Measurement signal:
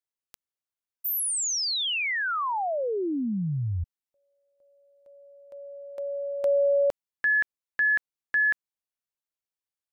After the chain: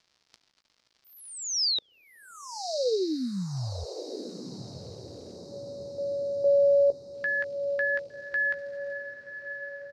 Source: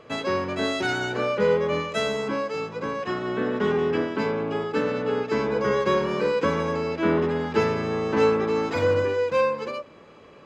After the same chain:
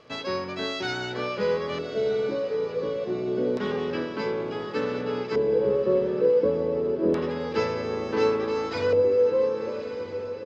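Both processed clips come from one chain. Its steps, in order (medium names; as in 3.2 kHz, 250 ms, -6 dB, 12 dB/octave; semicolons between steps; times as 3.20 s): crackle 200 per s -47 dBFS; doubling 16 ms -11 dB; LFO low-pass square 0.28 Hz 490–5000 Hz; echo that smears into a reverb 1165 ms, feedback 49%, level -10 dB; trim -5.5 dB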